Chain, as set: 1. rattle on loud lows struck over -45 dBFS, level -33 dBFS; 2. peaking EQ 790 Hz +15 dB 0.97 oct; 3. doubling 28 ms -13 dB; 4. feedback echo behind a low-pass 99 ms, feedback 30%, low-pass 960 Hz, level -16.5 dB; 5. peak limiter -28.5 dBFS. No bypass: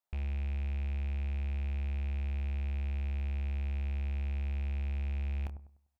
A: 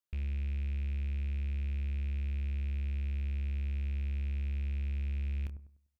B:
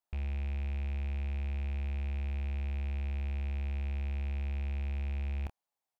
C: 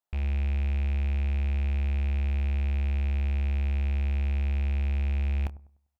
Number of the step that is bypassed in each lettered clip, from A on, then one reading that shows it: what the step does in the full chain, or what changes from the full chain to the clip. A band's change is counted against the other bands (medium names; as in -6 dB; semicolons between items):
2, 1 kHz band -10.5 dB; 4, 125 Hz band -1.5 dB; 5, mean gain reduction 7.0 dB